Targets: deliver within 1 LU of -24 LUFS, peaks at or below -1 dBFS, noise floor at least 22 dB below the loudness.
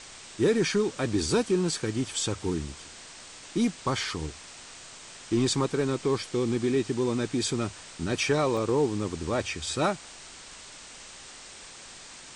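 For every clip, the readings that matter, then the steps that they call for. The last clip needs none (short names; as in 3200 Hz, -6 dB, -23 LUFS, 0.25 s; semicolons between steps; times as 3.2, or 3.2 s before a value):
dropouts 1; longest dropout 2.0 ms; noise floor -47 dBFS; noise floor target -50 dBFS; loudness -28.0 LUFS; peak -14.0 dBFS; loudness target -24.0 LUFS
-> interpolate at 8.57, 2 ms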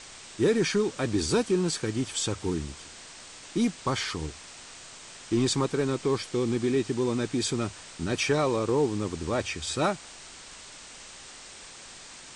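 dropouts 0; noise floor -47 dBFS; noise floor target -50 dBFS
-> noise print and reduce 6 dB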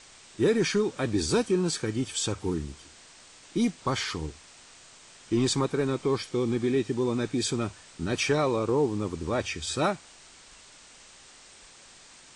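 noise floor -52 dBFS; loudness -28.0 LUFS; peak -14.0 dBFS; loudness target -24.0 LUFS
-> gain +4 dB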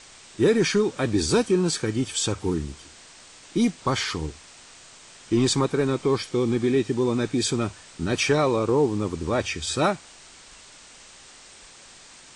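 loudness -24.0 LUFS; peak -10.0 dBFS; noise floor -48 dBFS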